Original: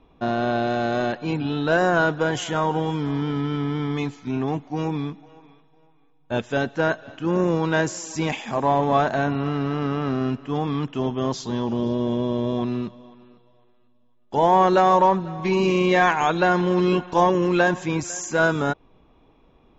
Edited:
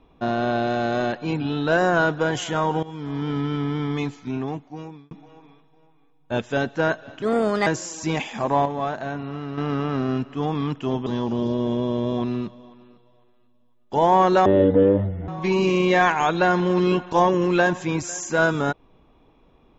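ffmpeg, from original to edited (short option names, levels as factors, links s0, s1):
-filter_complex "[0:a]asplit=10[s0][s1][s2][s3][s4][s5][s6][s7][s8][s9];[s0]atrim=end=2.83,asetpts=PTS-STARTPTS,afade=t=out:st=2.826:d=0.004:c=hsin:silence=0.149624[s10];[s1]atrim=start=2.83:end=5.11,asetpts=PTS-STARTPTS,afade=t=in:d=0.5:silence=0.149624,afade=t=out:st=1.32:d=0.96[s11];[s2]atrim=start=5.11:end=7.224,asetpts=PTS-STARTPTS,afade=t=in:d=0.004:c=hsin[s12];[s3]atrim=start=7.22:end=7.79,asetpts=PTS-STARTPTS,asetrate=56448,aresample=44100,atrim=end_sample=19638,asetpts=PTS-STARTPTS[s13];[s4]atrim=start=7.786:end=8.782[s14];[s5]atrim=start=8.778:end=9.702,asetpts=PTS-STARTPTS,volume=0.447[s15];[s6]atrim=start=9.698:end=11.192[s16];[s7]atrim=start=11.468:end=14.864[s17];[s8]atrim=start=14.86:end=15.29,asetpts=PTS-STARTPTS,asetrate=22932,aresample=44100,atrim=end_sample=36467,asetpts=PTS-STARTPTS[s18];[s9]atrim=start=15.286[s19];[s10][s11][s12]concat=n=3:v=0:a=1[s20];[s20][s13]acrossfade=d=0.004:c1=hsin:c2=hsin[s21];[s21][s14]acrossfade=d=0.004:c1=hsin:c2=hsin[s22];[s22][s15]acrossfade=d=0.004:c1=hsin:c2=hsin[s23];[s23][s16]acrossfade=d=0.004:c1=hsin:c2=hsin[s24];[s24][s17]acrossfade=d=0.004:c1=hsin:c2=hsin[s25];[s25][s18]acrossfade=d=0.004:c1=hsin:c2=hsin[s26];[s26][s19]acrossfade=d=0.004:c1=hsin:c2=hsin"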